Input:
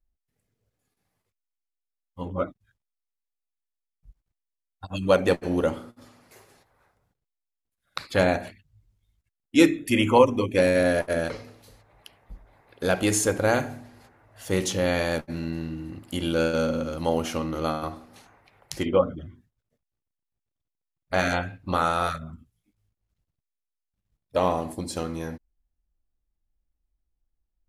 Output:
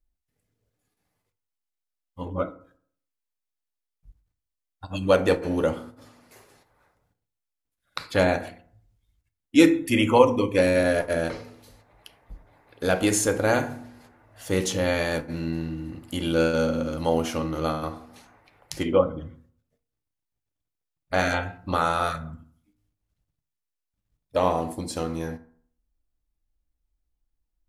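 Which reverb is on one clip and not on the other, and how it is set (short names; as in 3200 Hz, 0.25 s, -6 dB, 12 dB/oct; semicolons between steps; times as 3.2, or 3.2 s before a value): FDN reverb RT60 0.56 s, low-frequency decay 1.05×, high-frequency decay 0.5×, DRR 9.5 dB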